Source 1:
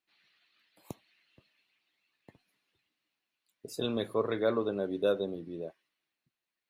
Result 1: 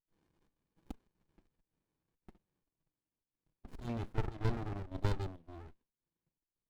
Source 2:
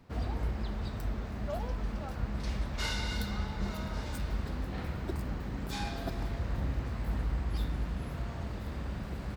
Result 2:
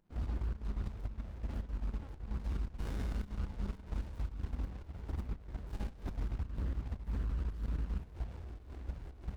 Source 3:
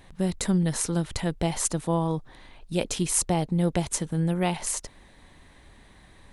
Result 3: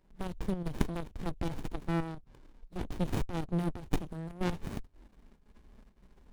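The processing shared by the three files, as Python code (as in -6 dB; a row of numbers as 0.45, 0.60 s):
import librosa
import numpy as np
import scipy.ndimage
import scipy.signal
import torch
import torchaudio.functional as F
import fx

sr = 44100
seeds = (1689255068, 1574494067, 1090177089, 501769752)

y = fx.peak_eq(x, sr, hz=130.0, db=-7.0, octaves=0.94)
y = fx.level_steps(y, sr, step_db=9)
y = fx.env_flanger(y, sr, rest_ms=6.3, full_db=-30.5)
y = fx.volume_shaper(y, sr, bpm=112, per_beat=1, depth_db=-10, release_ms=122.0, shape='slow start')
y = fx.running_max(y, sr, window=65)
y = y * 10.0 ** (3.0 / 20.0)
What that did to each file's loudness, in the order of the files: -7.0, -5.0, -10.0 LU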